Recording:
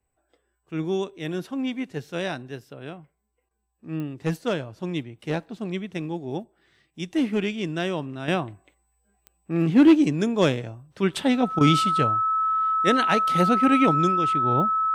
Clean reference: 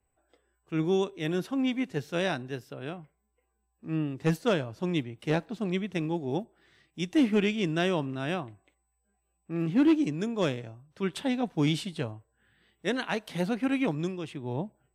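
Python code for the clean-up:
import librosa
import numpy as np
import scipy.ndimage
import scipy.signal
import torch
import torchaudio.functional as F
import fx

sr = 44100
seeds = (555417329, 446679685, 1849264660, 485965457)

y = fx.fix_declick_ar(x, sr, threshold=10.0)
y = fx.notch(y, sr, hz=1300.0, q=30.0)
y = fx.fix_interpolate(y, sr, at_s=(3.49, 11.59), length_ms=17.0)
y = fx.fix_level(y, sr, at_s=8.28, step_db=-7.5)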